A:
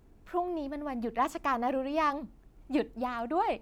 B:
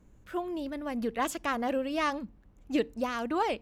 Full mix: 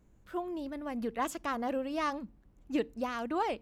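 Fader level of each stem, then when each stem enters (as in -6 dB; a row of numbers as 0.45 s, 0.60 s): -14.5 dB, -5.0 dB; 0.00 s, 0.00 s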